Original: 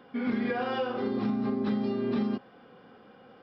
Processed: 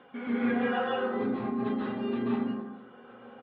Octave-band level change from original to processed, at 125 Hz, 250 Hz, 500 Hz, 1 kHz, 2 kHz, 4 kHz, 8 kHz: -4.0 dB, -0.5 dB, 0.0 dB, +2.0 dB, +3.0 dB, -0.5 dB, n/a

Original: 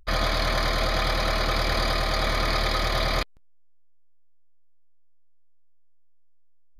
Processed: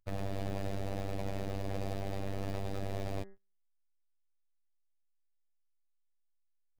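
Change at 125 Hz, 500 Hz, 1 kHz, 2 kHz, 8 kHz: -7.5, -11.0, -18.0, -23.0, -17.5 dB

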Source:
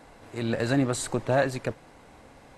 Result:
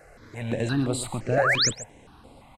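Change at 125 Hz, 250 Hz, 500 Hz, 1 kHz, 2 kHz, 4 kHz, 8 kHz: +1.5, -1.0, -0.5, +2.5, +6.5, +12.5, +6.5 dB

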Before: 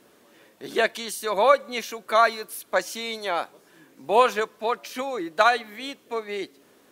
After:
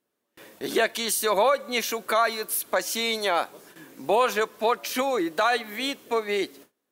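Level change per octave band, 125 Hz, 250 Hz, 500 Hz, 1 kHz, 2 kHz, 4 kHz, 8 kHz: n/a, +3.5 dB, -0.5 dB, -2.0 dB, -0.5 dB, +3.0 dB, +6.5 dB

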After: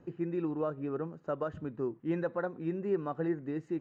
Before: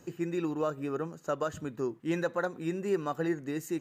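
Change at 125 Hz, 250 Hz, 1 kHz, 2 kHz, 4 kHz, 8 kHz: -0.5 dB, -1.0 dB, -4.0 dB, -7.0 dB, under -10 dB, under -25 dB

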